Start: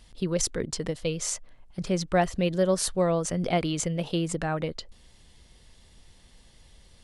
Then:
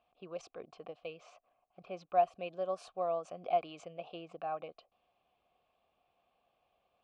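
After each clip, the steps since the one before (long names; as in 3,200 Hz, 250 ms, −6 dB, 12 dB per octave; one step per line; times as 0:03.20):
formant filter a
low-pass that shuts in the quiet parts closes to 2,600 Hz, open at −32 dBFS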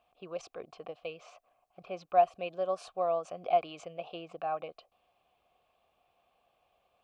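parametric band 230 Hz −3.5 dB 1.3 octaves
level +4.5 dB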